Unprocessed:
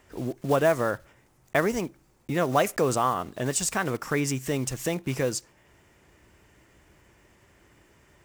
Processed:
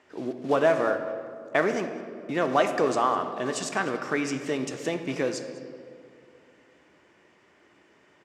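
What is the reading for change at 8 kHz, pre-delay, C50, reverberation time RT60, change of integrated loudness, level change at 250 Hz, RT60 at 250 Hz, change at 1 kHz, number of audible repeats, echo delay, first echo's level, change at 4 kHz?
-8.0 dB, 3 ms, 8.5 dB, 2.4 s, 0.0 dB, 0.0 dB, 2.8 s, +1.0 dB, 1, 0.204 s, -20.5 dB, -1.0 dB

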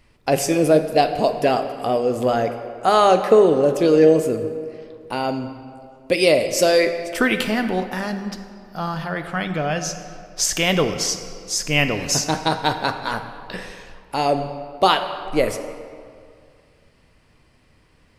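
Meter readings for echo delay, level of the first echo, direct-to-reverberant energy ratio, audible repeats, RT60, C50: none, none, 7.5 dB, none, 2.2 s, 9.0 dB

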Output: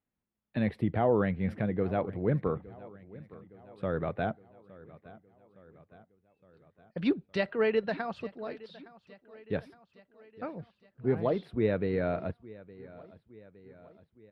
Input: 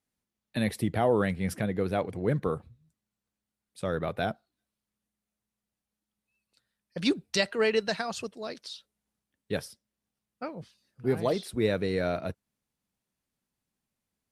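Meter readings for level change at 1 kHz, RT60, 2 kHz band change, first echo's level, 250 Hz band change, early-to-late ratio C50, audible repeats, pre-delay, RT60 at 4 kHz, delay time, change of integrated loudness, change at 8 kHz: -2.0 dB, none, -4.0 dB, -20.0 dB, -0.5 dB, none, 4, none, none, 0.864 s, -1.5 dB, under -25 dB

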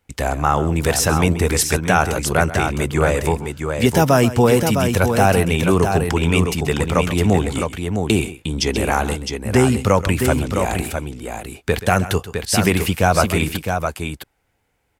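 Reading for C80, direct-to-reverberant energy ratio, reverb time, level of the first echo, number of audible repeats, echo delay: none, none, none, -15.0 dB, 2, 0.131 s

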